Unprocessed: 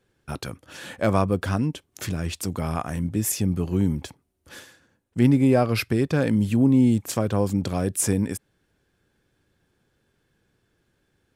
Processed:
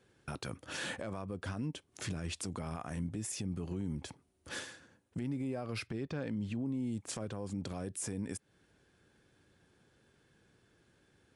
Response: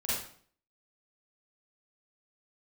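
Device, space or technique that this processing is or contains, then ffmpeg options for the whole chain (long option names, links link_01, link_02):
podcast mastering chain: -filter_complex "[0:a]asettb=1/sr,asplit=3[link_01][link_02][link_03];[link_01]atrim=end=5.874[link_04];[link_02]atrim=start=5.87:end=6.66,asetpts=PTS-STARTPTS,afade=type=in:duration=0.004:curve=qsin,afade=type=out:start_time=0.786:duration=0.004:curve=qsin,lowpass=5400[link_05];[link_03]atrim=start=6.656[link_06];[link_04][link_05]acrossfade=duration=0.004:curve1=hsin:curve2=qsin[link_07];[link_07][link_06]acrossfade=duration=0.004:curve1=qsin:curve2=hsin,highpass=frequency=70:poles=1,acompressor=threshold=-36dB:ratio=4,alimiter=level_in=6.5dB:limit=-24dB:level=0:latency=1:release=40,volume=-6.5dB,volume=2dB" -ar 24000 -c:a libmp3lame -b:a 112k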